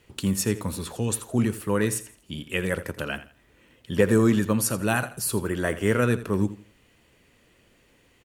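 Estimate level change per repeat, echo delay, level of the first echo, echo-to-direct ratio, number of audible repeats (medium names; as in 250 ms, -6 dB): -11.0 dB, 83 ms, -15.0 dB, -14.5 dB, 2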